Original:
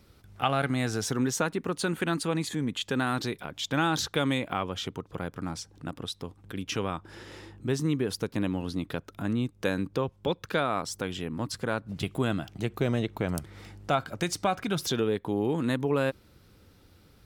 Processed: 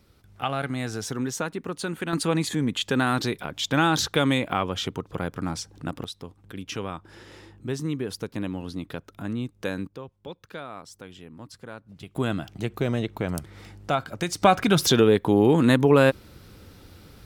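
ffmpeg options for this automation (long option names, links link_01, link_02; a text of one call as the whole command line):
ffmpeg -i in.wav -af "asetnsamples=nb_out_samples=441:pad=0,asendcmd='2.13 volume volume 5dB;6.04 volume volume -1.5dB;9.87 volume volume -10.5dB;12.16 volume volume 1.5dB;14.42 volume volume 9.5dB',volume=-1.5dB" out.wav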